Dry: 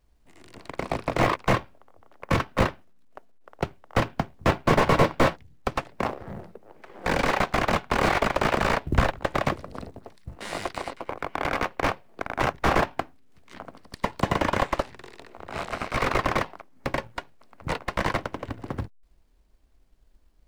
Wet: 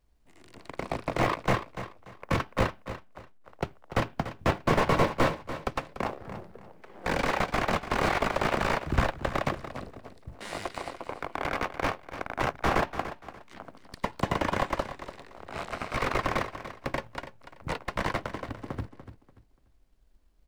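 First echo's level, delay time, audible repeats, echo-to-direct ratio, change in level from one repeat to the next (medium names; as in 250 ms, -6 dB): -12.0 dB, 291 ms, 3, -11.5 dB, -11.5 dB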